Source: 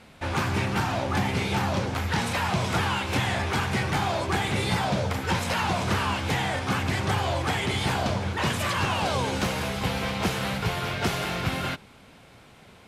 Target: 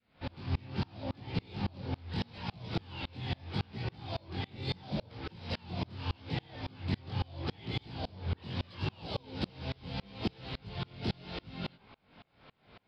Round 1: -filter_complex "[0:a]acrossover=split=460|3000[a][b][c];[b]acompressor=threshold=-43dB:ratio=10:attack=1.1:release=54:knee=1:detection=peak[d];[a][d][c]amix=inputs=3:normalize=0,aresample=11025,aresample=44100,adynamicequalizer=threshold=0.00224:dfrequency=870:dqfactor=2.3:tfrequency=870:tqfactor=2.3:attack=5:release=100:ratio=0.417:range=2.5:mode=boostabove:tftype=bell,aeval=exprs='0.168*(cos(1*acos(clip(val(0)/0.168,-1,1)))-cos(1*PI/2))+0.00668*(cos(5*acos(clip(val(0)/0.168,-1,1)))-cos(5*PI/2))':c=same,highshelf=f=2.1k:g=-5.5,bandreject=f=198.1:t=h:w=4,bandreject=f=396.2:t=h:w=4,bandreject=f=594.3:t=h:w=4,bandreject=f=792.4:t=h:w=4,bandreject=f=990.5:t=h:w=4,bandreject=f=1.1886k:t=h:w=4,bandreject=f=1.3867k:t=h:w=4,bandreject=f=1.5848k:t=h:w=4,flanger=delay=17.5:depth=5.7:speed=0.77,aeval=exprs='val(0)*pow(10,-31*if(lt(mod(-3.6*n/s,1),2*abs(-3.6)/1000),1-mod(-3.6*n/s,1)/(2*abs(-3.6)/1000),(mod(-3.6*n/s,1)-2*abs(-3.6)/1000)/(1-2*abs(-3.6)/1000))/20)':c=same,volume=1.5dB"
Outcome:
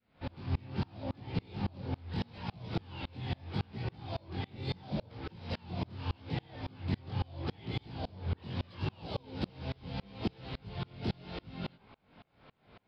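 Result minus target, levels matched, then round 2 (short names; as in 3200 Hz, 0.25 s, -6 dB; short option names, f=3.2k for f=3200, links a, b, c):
4000 Hz band -3.5 dB
-filter_complex "[0:a]acrossover=split=460|3000[a][b][c];[b]acompressor=threshold=-43dB:ratio=10:attack=1.1:release=54:knee=1:detection=peak[d];[a][d][c]amix=inputs=3:normalize=0,aresample=11025,aresample=44100,adynamicequalizer=threshold=0.00224:dfrequency=870:dqfactor=2.3:tfrequency=870:tqfactor=2.3:attack=5:release=100:ratio=0.417:range=2.5:mode=boostabove:tftype=bell,aeval=exprs='0.168*(cos(1*acos(clip(val(0)/0.168,-1,1)))-cos(1*PI/2))+0.00668*(cos(5*acos(clip(val(0)/0.168,-1,1)))-cos(5*PI/2))':c=same,bandreject=f=198.1:t=h:w=4,bandreject=f=396.2:t=h:w=4,bandreject=f=594.3:t=h:w=4,bandreject=f=792.4:t=h:w=4,bandreject=f=990.5:t=h:w=4,bandreject=f=1.1886k:t=h:w=4,bandreject=f=1.3867k:t=h:w=4,bandreject=f=1.5848k:t=h:w=4,flanger=delay=17.5:depth=5.7:speed=0.77,aeval=exprs='val(0)*pow(10,-31*if(lt(mod(-3.6*n/s,1),2*abs(-3.6)/1000),1-mod(-3.6*n/s,1)/(2*abs(-3.6)/1000),(mod(-3.6*n/s,1)-2*abs(-3.6)/1000)/(1-2*abs(-3.6)/1000))/20)':c=same,volume=1.5dB"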